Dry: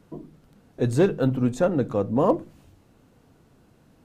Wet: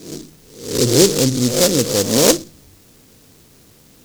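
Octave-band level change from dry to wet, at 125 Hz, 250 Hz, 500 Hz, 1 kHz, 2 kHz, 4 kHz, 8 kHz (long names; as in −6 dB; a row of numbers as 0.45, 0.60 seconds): +4.5, +6.0, +7.0, +1.5, +10.5, +27.0, +29.5 decibels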